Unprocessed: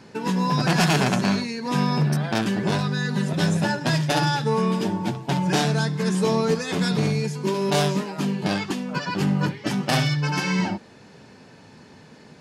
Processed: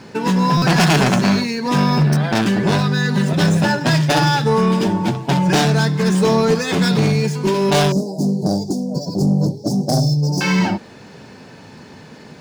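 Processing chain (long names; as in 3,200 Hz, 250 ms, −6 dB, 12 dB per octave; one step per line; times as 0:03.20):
running median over 3 samples
0:07.92–0:10.41: elliptic band-stop filter 700–5,100 Hz, stop band 40 dB
soft clipping −15 dBFS, distortion −19 dB
buffer that repeats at 0:00.57, samples 256, times 8
level +8 dB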